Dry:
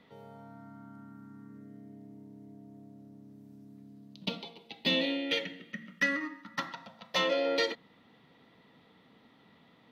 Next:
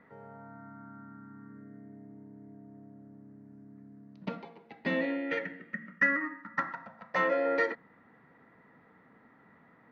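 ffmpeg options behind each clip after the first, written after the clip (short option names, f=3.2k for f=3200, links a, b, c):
-af "lowpass=7.1k,highshelf=f=2.4k:t=q:w=3:g=-12"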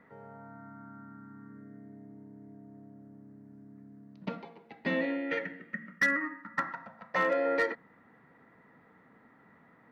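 -af "volume=20dB,asoftclip=hard,volume=-20dB"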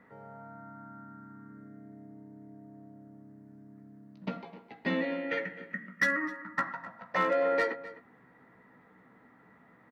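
-filter_complex "[0:a]asplit=2[a][b];[b]adelay=16,volume=-8dB[c];[a][c]amix=inputs=2:normalize=0,asplit=2[d][e];[e]adelay=256.6,volume=-16dB,highshelf=f=4k:g=-5.77[f];[d][f]amix=inputs=2:normalize=0"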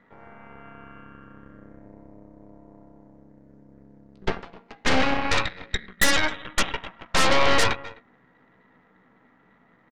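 -af "aresample=16000,aresample=44100,aeval=exprs='0.15*(cos(1*acos(clip(val(0)/0.15,-1,1)))-cos(1*PI/2))+0.0266*(cos(3*acos(clip(val(0)/0.15,-1,1)))-cos(3*PI/2))+0.0531*(cos(8*acos(clip(val(0)/0.15,-1,1)))-cos(8*PI/2))':c=same,volume=6.5dB"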